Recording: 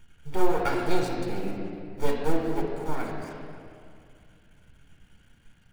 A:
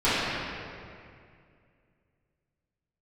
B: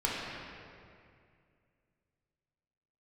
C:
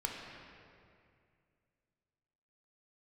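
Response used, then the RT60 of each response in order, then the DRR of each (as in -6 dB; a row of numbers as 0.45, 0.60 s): C; 2.3, 2.3, 2.3 s; -15.5, -6.0, -1.0 dB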